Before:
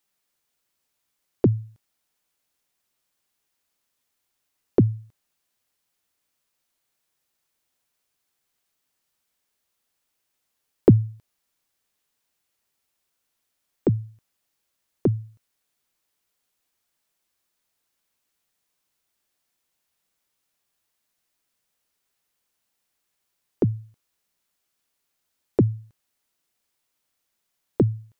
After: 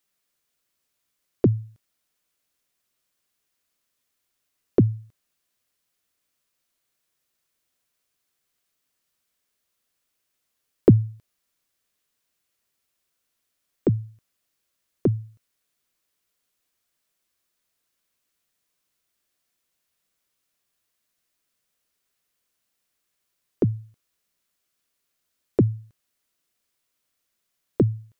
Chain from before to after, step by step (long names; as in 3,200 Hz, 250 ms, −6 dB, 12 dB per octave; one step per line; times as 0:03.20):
parametric band 850 Hz −6.5 dB 0.26 octaves